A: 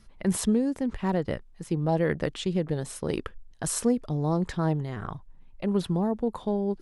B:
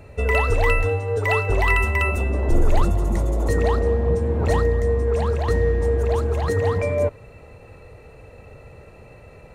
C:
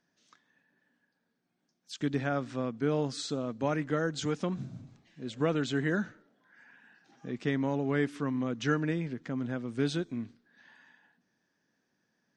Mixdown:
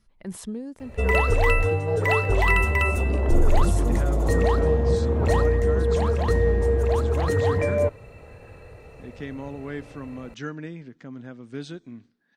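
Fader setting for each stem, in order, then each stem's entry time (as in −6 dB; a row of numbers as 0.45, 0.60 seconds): −9.5, −1.0, −5.0 decibels; 0.00, 0.80, 1.75 seconds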